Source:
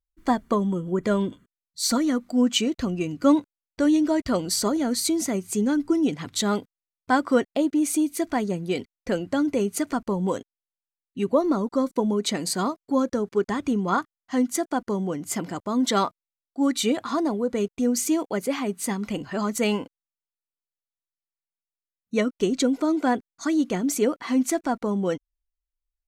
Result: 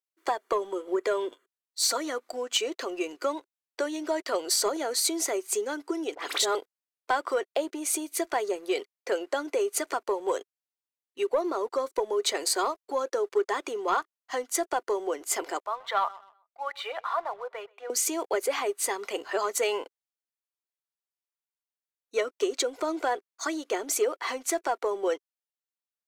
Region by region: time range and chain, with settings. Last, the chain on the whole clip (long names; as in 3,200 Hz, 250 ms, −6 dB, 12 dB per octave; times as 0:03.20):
0:06.15–0:06.55: all-pass dispersion highs, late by 41 ms, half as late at 1,800 Hz + background raised ahead of every attack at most 100 dB per second
0:15.66–0:17.90: high-pass filter 700 Hz 24 dB per octave + high-frequency loss of the air 460 metres + repeating echo 127 ms, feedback 38%, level −21.5 dB
whole clip: downward compressor, threshold −23 dBFS; elliptic high-pass filter 380 Hz, stop band 60 dB; leveller curve on the samples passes 1